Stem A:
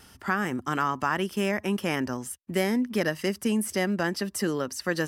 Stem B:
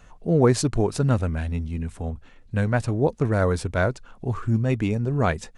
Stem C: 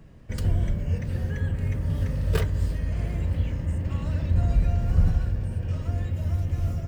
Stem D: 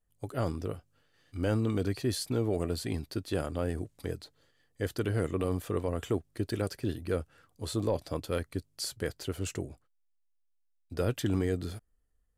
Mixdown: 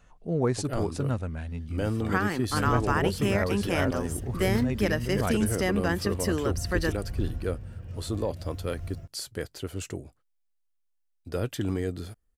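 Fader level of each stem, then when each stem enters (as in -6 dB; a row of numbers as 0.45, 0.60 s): -1.0, -8.0, -11.5, 0.0 dB; 1.85, 0.00, 2.20, 0.35 s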